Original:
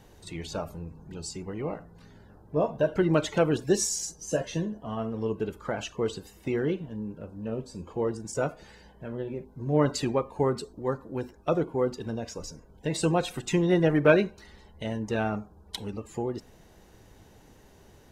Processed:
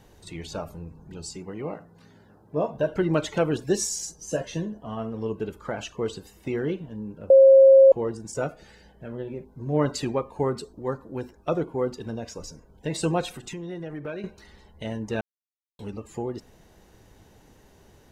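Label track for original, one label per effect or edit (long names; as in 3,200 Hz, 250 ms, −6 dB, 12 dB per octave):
1.360000	2.740000	high-pass filter 110 Hz
7.300000	7.920000	beep over 538 Hz −9 dBFS
8.440000	9.100000	notch filter 1,000 Hz, Q 5.3
13.320000	14.240000	downward compressor 3 to 1, threshold −36 dBFS
15.210000	15.790000	silence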